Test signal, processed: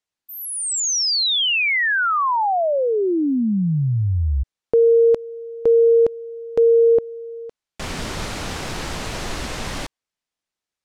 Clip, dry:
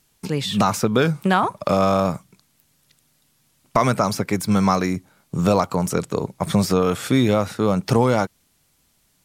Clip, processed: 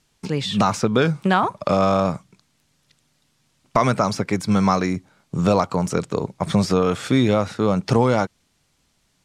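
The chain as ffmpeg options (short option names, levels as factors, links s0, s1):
-af "lowpass=7200"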